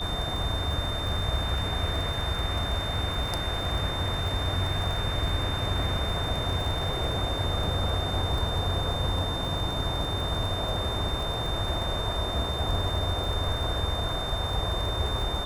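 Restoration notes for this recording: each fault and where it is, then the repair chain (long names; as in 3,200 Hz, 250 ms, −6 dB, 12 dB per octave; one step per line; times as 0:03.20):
surface crackle 26 per second −31 dBFS
whistle 3,600 Hz −33 dBFS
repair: click removal
notch filter 3,600 Hz, Q 30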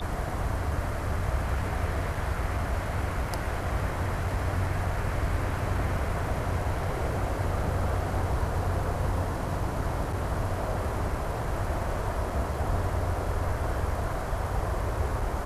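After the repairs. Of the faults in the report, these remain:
none of them is left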